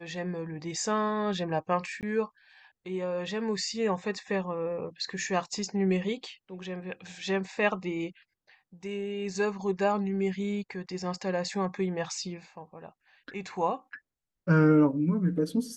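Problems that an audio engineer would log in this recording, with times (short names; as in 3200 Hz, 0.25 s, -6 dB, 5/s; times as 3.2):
2.01–2.03 gap 18 ms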